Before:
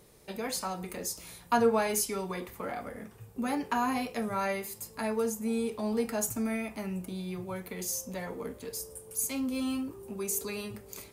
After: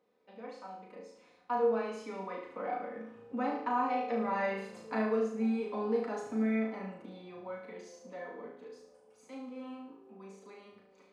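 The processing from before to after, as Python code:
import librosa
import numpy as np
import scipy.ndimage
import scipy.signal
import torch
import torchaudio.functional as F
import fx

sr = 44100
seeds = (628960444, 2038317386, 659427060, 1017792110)

y = fx.doppler_pass(x, sr, speed_mps=5, closest_m=2.6, pass_at_s=4.72)
y = scipy.signal.sosfilt(scipy.signal.butter(2, 310.0, 'highpass', fs=sr, output='sos'), y)
y = fx.hum_notches(y, sr, base_hz=50, count=9)
y = y + 0.61 * np.pad(y, (int(4.0 * sr / 1000.0), 0))[:len(y)]
y = fx.rider(y, sr, range_db=4, speed_s=0.5)
y = fx.spacing_loss(y, sr, db_at_10k=37)
y = fx.room_flutter(y, sr, wall_m=6.2, rt60_s=0.63)
y = y * librosa.db_to_amplitude(7.5)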